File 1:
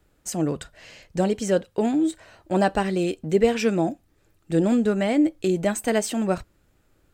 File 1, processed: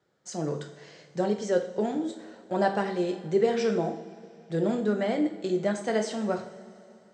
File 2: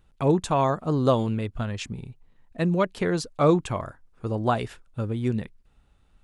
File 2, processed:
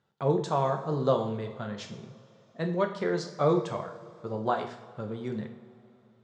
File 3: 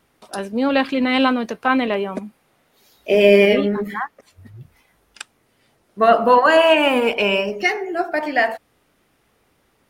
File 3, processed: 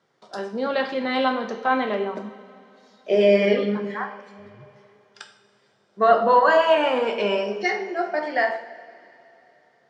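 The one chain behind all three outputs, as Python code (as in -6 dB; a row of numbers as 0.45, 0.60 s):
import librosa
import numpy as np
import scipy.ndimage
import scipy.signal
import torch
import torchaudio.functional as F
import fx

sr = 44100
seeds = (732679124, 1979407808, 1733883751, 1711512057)

y = fx.cabinet(x, sr, low_hz=130.0, low_slope=24, high_hz=6300.0, hz=(280.0, 460.0, 2600.0), db=(-10, 3, -9))
y = fx.rev_double_slope(y, sr, seeds[0], early_s=0.55, late_s=3.3, knee_db=-18, drr_db=3.5)
y = y * 10.0 ** (-5.0 / 20.0)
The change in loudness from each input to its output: -5.0, -4.5, -4.5 LU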